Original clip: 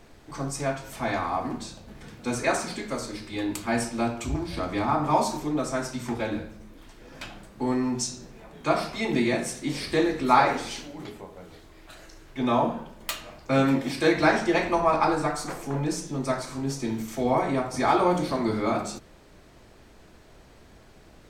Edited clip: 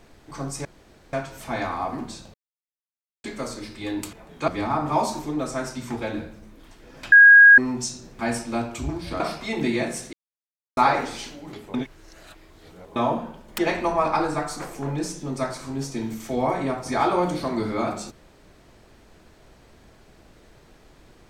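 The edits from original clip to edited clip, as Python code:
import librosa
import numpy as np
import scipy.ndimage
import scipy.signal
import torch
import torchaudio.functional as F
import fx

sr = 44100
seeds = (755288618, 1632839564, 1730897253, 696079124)

y = fx.edit(x, sr, fx.insert_room_tone(at_s=0.65, length_s=0.48),
    fx.silence(start_s=1.86, length_s=0.9),
    fx.swap(start_s=3.65, length_s=1.01, other_s=8.37, other_length_s=0.35),
    fx.bleep(start_s=7.3, length_s=0.46, hz=1640.0, db=-6.5),
    fx.silence(start_s=9.65, length_s=0.64),
    fx.reverse_span(start_s=11.26, length_s=1.22),
    fx.cut(start_s=13.1, length_s=1.36), tone=tone)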